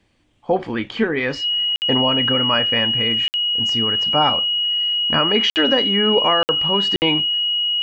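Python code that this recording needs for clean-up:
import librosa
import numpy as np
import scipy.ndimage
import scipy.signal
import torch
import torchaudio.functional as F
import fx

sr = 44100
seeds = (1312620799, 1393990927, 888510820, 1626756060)

y = fx.notch(x, sr, hz=2900.0, q=30.0)
y = fx.fix_interpolate(y, sr, at_s=(1.76, 3.28, 5.5, 6.43, 6.96), length_ms=59.0)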